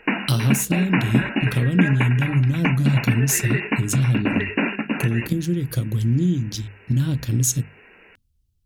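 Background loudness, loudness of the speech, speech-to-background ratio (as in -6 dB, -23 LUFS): -25.0 LUFS, -21.5 LUFS, 3.5 dB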